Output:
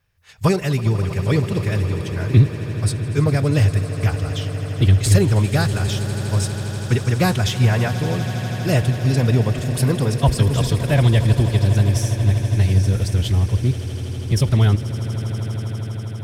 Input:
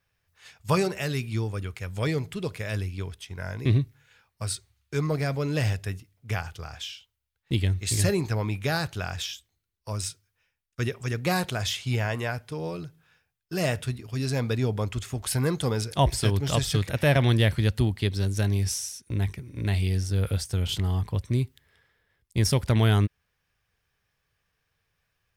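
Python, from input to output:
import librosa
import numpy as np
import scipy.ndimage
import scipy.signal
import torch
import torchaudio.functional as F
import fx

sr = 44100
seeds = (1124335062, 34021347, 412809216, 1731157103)

p1 = fx.low_shelf(x, sr, hz=210.0, db=7.0)
p2 = fx.cheby_harmonics(p1, sr, harmonics=(2, 4), levels_db=(-16, -36), full_scale_db=-6.5)
p3 = fx.stretch_vocoder(p2, sr, factor=0.64)
p4 = fx.rider(p3, sr, range_db=3, speed_s=2.0)
p5 = p4 + fx.echo_swell(p4, sr, ms=81, loudest=8, wet_db=-17.0, dry=0)
y = p5 * librosa.db_to_amplitude(4.0)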